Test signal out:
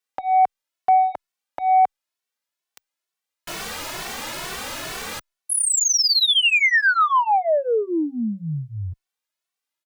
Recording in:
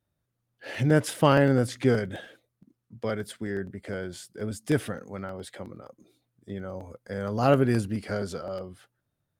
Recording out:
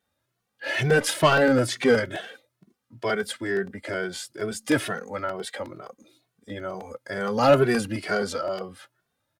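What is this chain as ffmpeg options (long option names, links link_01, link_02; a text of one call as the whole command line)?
ffmpeg -i in.wav -filter_complex "[0:a]asplit=2[link_01][link_02];[link_02]highpass=frequency=720:poles=1,volume=16dB,asoftclip=type=tanh:threshold=-6.5dB[link_03];[link_01][link_03]amix=inputs=2:normalize=0,lowpass=frequency=6600:poles=1,volume=-6dB,asplit=2[link_04][link_05];[link_05]adelay=2.2,afreqshift=2.2[link_06];[link_04][link_06]amix=inputs=2:normalize=1,volume=2.5dB" out.wav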